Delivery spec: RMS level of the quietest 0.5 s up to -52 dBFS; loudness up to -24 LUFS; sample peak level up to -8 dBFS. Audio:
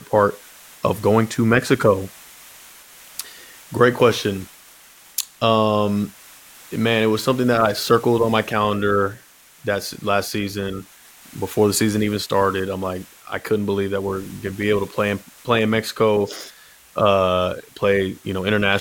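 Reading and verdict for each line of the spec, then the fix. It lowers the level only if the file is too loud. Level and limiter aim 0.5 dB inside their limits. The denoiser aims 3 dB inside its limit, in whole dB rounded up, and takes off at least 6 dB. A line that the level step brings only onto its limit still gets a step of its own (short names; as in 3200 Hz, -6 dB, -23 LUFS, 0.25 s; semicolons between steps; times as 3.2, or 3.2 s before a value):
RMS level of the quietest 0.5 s -47 dBFS: fail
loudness -20.0 LUFS: fail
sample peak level -2.5 dBFS: fail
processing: denoiser 6 dB, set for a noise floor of -47 dBFS; gain -4.5 dB; limiter -8.5 dBFS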